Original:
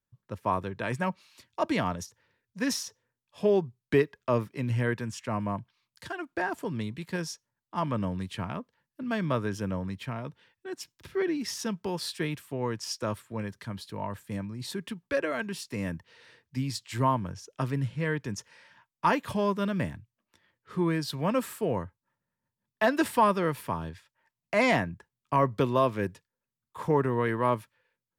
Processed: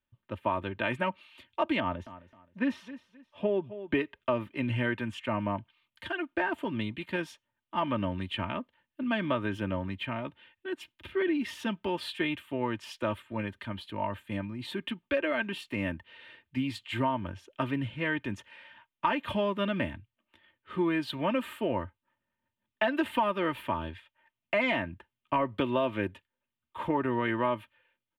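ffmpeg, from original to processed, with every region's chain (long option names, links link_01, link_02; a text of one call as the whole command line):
ffmpeg -i in.wav -filter_complex "[0:a]asettb=1/sr,asplit=3[link_01][link_02][link_03];[link_01]atrim=end=1.804[link_04];[link_02]atrim=start=1.8:end=3.95,asetpts=PTS-STARTPTS,afade=type=in:duration=0.004:curve=qsin,afade=type=out:start_time=2.146:duration=0.004:curve=qsin,lowpass=frequency=1500:poles=1,aecho=1:1:263|526:0.133|0.0347,atrim=end_sample=94815[link_05];[link_03]atrim=start=3.946[link_06];[link_04][link_05]acrossfade=duration=0.004:curve1=hsin:curve2=qsin[link_07];[link_07][link_06]acrossfade=duration=0.004:curve1=qsin:curve2=hsin,highshelf=frequency=4100:width_type=q:width=3:gain=-10.5,aecho=1:1:3.3:0.61,acompressor=threshold=-24dB:ratio=6" out.wav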